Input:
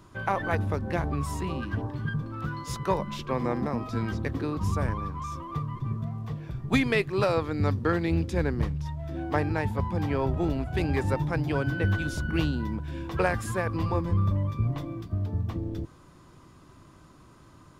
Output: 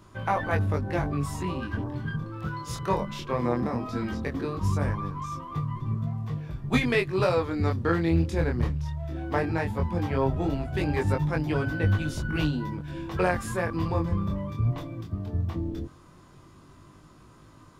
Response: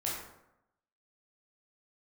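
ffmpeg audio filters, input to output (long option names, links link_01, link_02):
-af "flanger=delay=19:depth=6.3:speed=0.17,volume=3.5dB"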